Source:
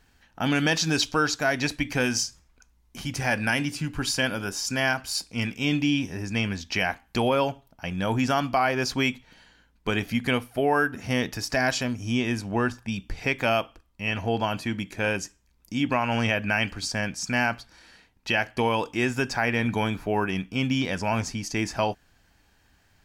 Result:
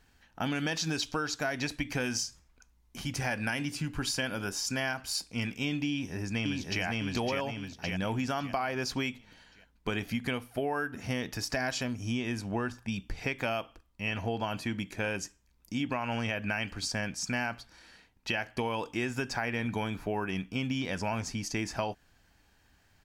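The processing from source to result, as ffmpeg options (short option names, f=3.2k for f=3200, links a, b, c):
-filter_complex "[0:a]asplit=2[a][b];[b]afade=t=in:st=5.89:d=0.01,afade=t=out:st=6.84:d=0.01,aecho=0:1:560|1120|1680|2240|2800:0.944061|0.377624|0.15105|0.0604199|0.024168[c];[a][c]amix=inputs=2:normalize=0,acompressor=threshold=-25dB:ratio=6,volume=-3dB"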